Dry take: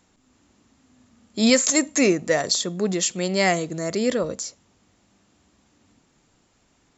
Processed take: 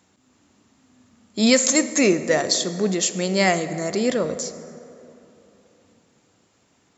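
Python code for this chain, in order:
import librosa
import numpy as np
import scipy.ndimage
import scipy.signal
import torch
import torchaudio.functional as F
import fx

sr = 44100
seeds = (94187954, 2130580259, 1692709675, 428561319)

y = scipy.signal.sosfilt(scipy.signal.butter(2, 87.0, 'highpass', fs=sr, output='sos'), x)
y = fx.rev_plate(y, sr, seeds[0], rt60_s=3.2, hf_ratio=0.45, predelay_ms=0, drr_db=11.0)
y = y * 10.0 ** (1.0 / 20.0)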